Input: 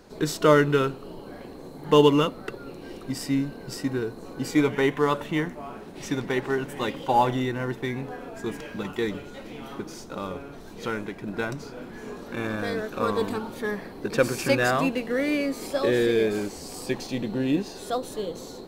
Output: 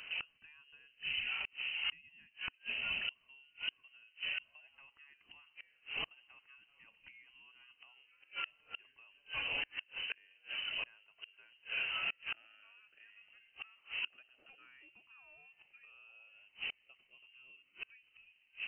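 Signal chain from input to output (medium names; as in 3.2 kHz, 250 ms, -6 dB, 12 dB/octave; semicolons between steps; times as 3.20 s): compression 12:1, threshold -24 dBFS, peak gain reduction 13.5 dB; inverted gate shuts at -28 dBFS, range -34 dB; frequency inversion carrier 3 kHz; trim +1.5 dB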